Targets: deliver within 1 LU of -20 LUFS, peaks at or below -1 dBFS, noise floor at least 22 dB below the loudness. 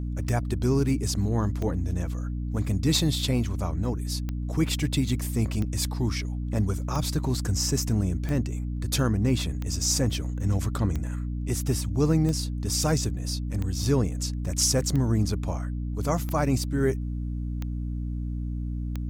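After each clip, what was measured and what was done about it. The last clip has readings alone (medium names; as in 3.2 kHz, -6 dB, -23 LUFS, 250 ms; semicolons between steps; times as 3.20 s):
clicks found 15; hum 60 Hz; highest harmonic 300 Hz; hum level -28 dBFS; loudness -27.0 LUFS; peak level -10.5 dBFS; loudness target -20.0 LUFS
-> de-click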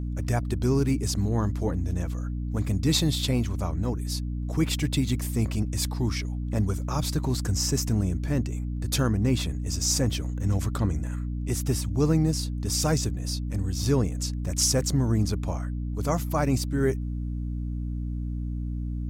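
clicks found 0; hum 60 Hz; highest harmonic 300 Hz; hum level -28 dBFS
-> hum notches 60/120/180/240/300 Hz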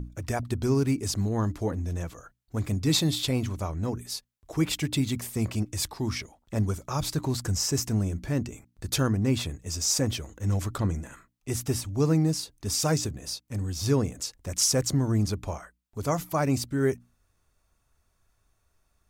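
hum not found; loudness -28.0 LUFS; peak level -12.0 dBFS; loudness target -20.0 LUFS
-> trim +8 dB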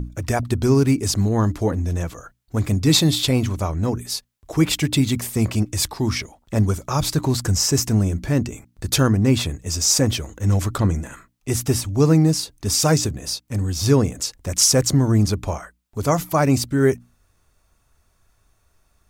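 loudness -20.0 LUFS; peak level -4.0 dBFS; noise floor -65 dBFS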